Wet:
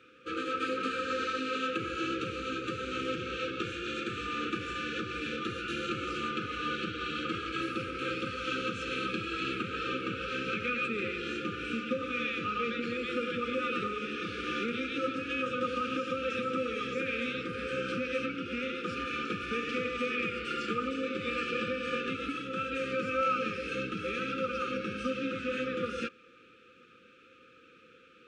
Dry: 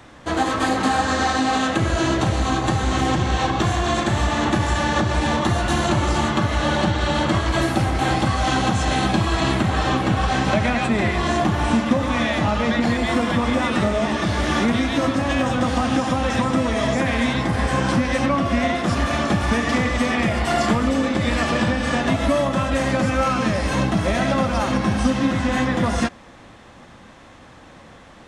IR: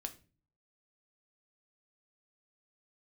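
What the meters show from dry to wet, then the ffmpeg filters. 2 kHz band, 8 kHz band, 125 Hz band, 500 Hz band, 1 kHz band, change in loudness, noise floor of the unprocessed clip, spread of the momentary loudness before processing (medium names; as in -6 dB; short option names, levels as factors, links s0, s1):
-10.5 dB, -21.0 dB, -23.0 dB, -11.5 dB, -14.0 dB, -13.0 dB, -45 dBFS, 1 LU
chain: -filter_complex "[0:a]afftfilt=real='re*(1-between(b*sr/4096,530,1200))':imag='im*(1-between(b*sr/4096,530,1200))':win_size=4096:overlap=0.75,asplit=3[s0][s1][s2];[s0]bandpass=f=730:t=q:w=8,volume=1[s3];[s1]bandpass=f=1090:t=q:w=8,volume=0.501[s4];[s2]bandpass=f=2440:t=q:w=8,volume=0.355[s5];[s3][s4][s5]amix=inputs=3:normalize=0,volume=2.24"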